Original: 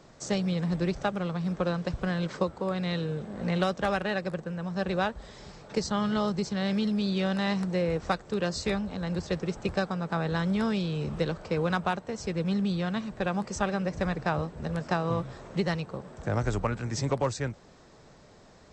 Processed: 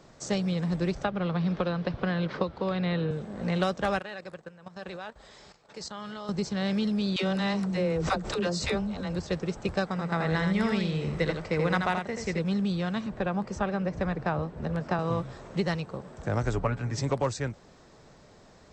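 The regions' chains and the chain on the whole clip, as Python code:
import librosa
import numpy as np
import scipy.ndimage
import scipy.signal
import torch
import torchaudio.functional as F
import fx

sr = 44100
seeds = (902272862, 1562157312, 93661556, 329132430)

y = fx.chain(x, sr, fx.lowpass(hz=4400.0, slope=24),
    fx.band_squash(depth_pct=100), at=(1.04, 3.11))
y = fx.chain(y, sr, fx.low_shelf(hz=340.0, db=-11.0),
    fx.notch(hz=5800.0, q=25.0),
    fx.level_steps(step_db=13), at=(3.99, 6.29))
y = fx.chain(y, sr, fx.notch(hz=1700.0, q=19.0),
    fx.dispersion(late='lows', ms=81.0, hz=400.0),
    fx.pre_swell(db_per_s=65.0), at=(7.16, 9.16))
y = fx.chain(y, sr, fx.peak_eq(hz=2000.0, db=11.0, octaves=0.25),
    fx.echo_single(ms=82, db=-5.5), at=(9.87, 12.39))
y = fx.chain(y, sr, fx.lowpass(hz=2200.0, slope=6),
    fx.band_squash(depth_pct=40), at=(13.06, 14.99))
y = fx.chain(y, sr, fx.high_shelf(hz=5300.0, db=-11.5),
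    fx.comb(ms=7.1, depth=0.51), at=(16.53, 16.98))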